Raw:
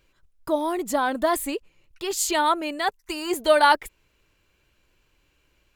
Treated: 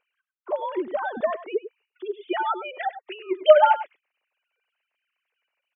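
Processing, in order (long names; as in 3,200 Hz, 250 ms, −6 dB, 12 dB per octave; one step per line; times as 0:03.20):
three sine waves on the formant tracks
0:01.42–0:03.03: gate on every frequency bin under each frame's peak −20 dB strong
single-tap delay 99 ms −13.5 dB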